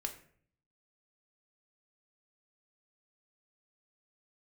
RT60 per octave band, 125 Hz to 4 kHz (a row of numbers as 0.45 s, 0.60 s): 0.90 s, 0.75 s, 0.60 s, 0.50 s, 0.50 s, 0.35 s